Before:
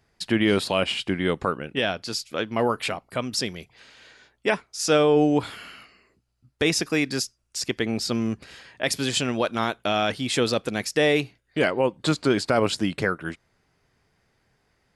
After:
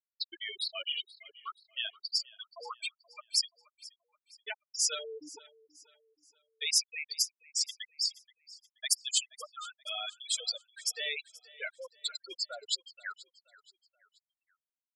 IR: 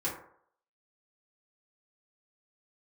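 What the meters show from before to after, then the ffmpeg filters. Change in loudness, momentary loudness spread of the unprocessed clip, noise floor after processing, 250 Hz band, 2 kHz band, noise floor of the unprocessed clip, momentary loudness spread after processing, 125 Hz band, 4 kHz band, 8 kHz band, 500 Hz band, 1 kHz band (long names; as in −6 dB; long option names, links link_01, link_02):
−9.5 dB, 9 LU, below −85 dBFS, −39.0 dB, −13.5 dB, −70 dBFS, 18 LU, below −40 dB, −4.0 dB, −1.0 dB, −25.5 dB, −19.5 dB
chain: -filter_complex "[0:a]aeval=exprs='clip(val(0),-1,0.0631)':channel_layout=same,aderivative,afftfilt=real='re*gte(hypot(re,im),0.0447)':imag='im*gte(hypot(re,im),0.0447)':win_size=1024:overlap=0.75,equalizer=frequency=100:width_type=o:width=0.67:gain=6,equalizer=frequency=1000:width_type=o:width=0.67:gain=7,equalizer=frequency=4000:width_type=o:width=0.67:gain=3,asplit=2[link_01][link_02];[link_02]aecho=0:1:478|956|1434:0.0891|0.0365|0.015[link_03];[link_01][link_03]amix=inputs=2:normalize=0,volume=3dB"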